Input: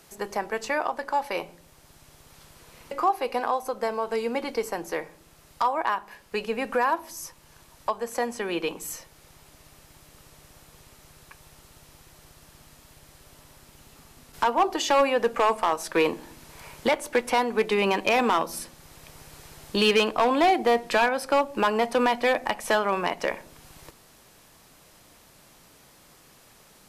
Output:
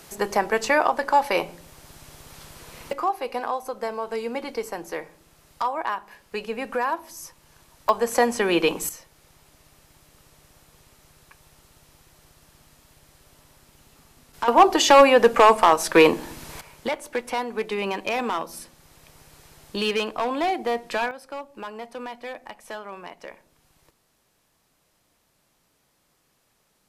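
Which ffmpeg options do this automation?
ffmpeg -i in.wav -af "asetnsamples=nb_out_samples=441:pad=0,asendcmd='2.93 volume volume -1.5dB;7.89 volume volume 8dB;8.89 volume volume -3dB;14.48 volume volume 8dB;16.61 volume volume -4dB;21.11 volume volume -13dB',volume=7dB" out.wav

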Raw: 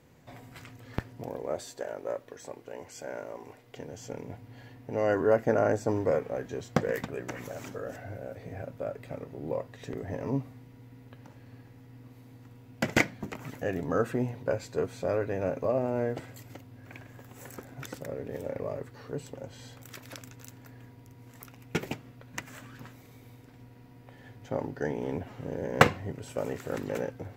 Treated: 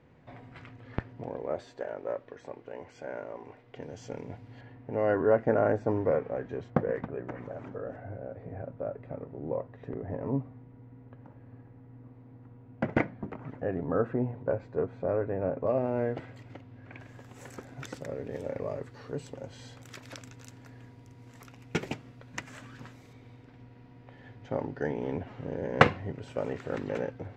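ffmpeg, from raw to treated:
ffmpeg -i in.wav -af "asetnsamples=nb_out_samples=441:pad=0,asendcmd='3.82 lowpass f 4900;4.61 lowpass f 2100;6.7 lowpass f 1300;15.67 lowpass f 3000;17 lowpass f 7500;23.13 lowpass f 3900',lowpass=2700" out.wav

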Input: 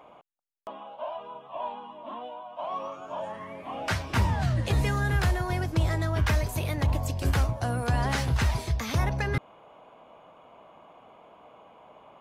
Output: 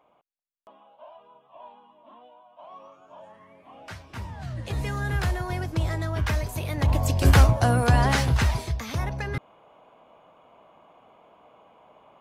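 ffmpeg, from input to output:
ffmpeg -i in.wav -af "volume=9.5dB,afade=type=in:start_time=4.33:duration=0.82:silence=0.281838,afade=type=in:start_time=6.68:duration=0.72:silence=0.298538,afade=type=out:start_time=7.4:duration=1.44:silence=0.251189" out.wav

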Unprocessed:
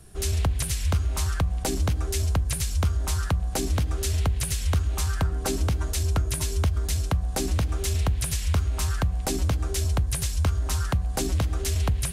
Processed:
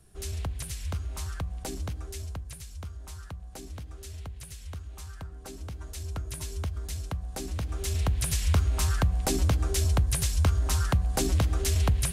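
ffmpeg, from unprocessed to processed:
ffmpeg -i in.wav -af "volume=7dB,afade=type=out:start_time=1.7:duration=0.93:silence=0.446684,afade=type=in:start_time=5.55:duration=0.89:silence=0.446684,afade=type=in:start_time=7.52:duration=0.91:silence=0.354813" out.wav

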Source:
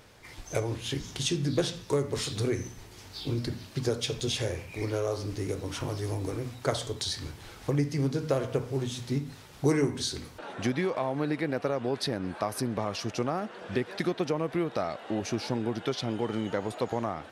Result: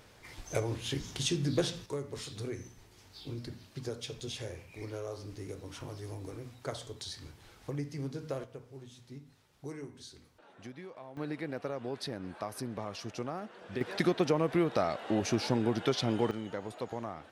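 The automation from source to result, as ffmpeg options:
ffmpeg -i in.wav -af "asetnsamples=nb_out_samples=441:pad=0,asendcmd='1.86 volume volume -10dB;8.44 volume volume -18dB;11.17 volume volume -8dB;13.81 volume volume 1dB;16.31 volume volume -8dB',volume=-2.5dB" out.wav

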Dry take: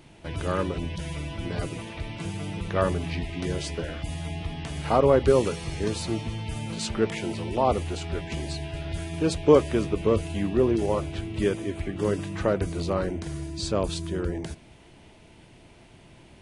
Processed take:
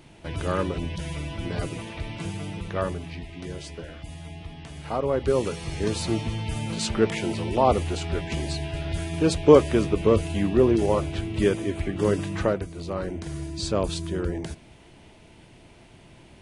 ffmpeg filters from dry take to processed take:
ffmpeg -i in.wav -af "volume=20dB,afade=type=out:start_time=2.22:duration=0.88:silence=0.421697,afade=type=in:start_time=5.07:duration=1.03:silence=0.334965,afade=type=out:start_time=12.39:duration=0.29:silence=0.266073,afade=type=in:start_time=12.68:duration=0.74:silence=0.334965" out.wav

